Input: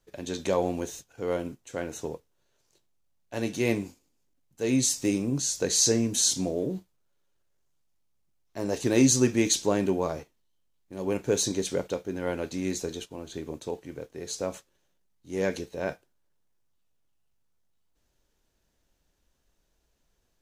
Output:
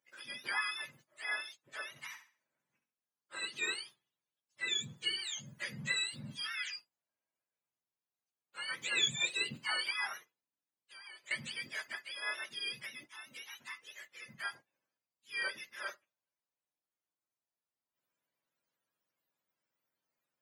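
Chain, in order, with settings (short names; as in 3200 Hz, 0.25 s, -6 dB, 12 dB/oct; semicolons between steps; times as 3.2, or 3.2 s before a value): spectrum mirrored in octaves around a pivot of 950 Hz; HPF 710 Hz 12 dB/oct; 1.89–3.45 flutter echo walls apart 11.6 m, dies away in 0.4 s; 10.17–11.31 compressor 4:1, threshold -47 dBFS, peak gain reduction 15 dB; gain -5.5 dB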